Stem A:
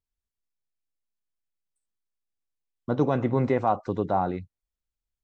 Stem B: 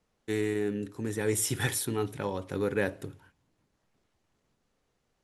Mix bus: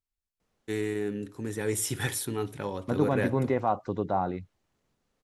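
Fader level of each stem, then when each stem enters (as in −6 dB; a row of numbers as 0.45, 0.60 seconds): −3.0, −1.0 decibels; 0.00, 0.40 seconds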